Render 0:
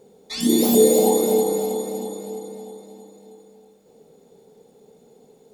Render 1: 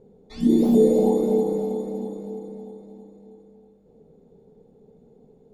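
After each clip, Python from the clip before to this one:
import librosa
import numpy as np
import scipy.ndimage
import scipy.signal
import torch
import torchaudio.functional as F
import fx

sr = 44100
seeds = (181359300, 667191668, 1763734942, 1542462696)

y = fx.tilt_eq(x, sr, slope=-4.5)
y = y * 10.0 ** (-8.0 / 20.0)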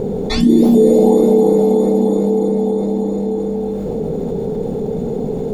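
y = fx.env_flatten(x, sr, amount_pct=70)
y = y * 10.0 ** (5.0 / 20.0)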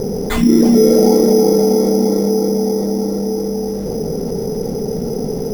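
y = np.repeat(x[::8], 8)[:len(x)]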